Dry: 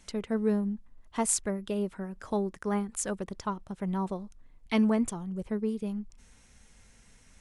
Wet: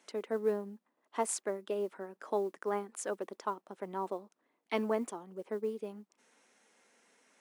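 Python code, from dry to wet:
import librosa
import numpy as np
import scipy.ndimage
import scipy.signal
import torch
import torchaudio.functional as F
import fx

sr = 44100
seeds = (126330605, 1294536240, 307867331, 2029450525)

y = scipy.signal.sosfilt(scipy.signal.butter(4, 310.0, 'highpass', fs=sr, output='sos'), x)
y = fx.high_shelf(y, sr, hz=2300.0, db=-9.5)
y = fx.mod_noise(y, sr, seeds[0], snr_db=34)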